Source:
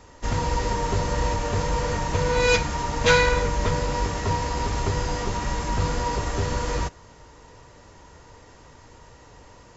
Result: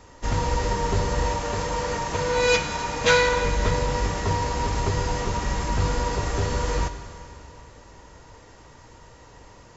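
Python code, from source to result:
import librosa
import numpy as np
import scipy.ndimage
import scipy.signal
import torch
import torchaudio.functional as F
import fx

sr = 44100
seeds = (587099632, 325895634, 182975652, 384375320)

y = fx.low_shelf(x, sr, hz=130.0, db=-10.0, at=(1.25, 3.45))
y = fx.rev_plate(y, sr, seeds[0], rt60_s=2.9, hf_ratio=0.95, predelay_ms=0, drr_db=9.0)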